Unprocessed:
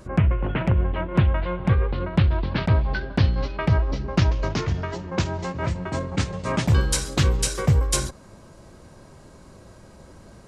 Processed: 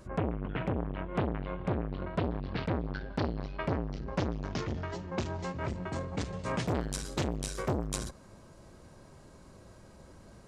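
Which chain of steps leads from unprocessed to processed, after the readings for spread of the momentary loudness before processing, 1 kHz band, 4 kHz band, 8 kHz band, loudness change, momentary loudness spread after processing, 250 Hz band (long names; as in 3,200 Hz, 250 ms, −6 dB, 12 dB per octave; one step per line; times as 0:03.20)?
7 LU, −7.5 dB, −12.5 dB, −13.5 dB, −11.5 dB, 21 LU, −8.0 dB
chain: saturating transformer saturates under 840 Hz
level −6.5 dB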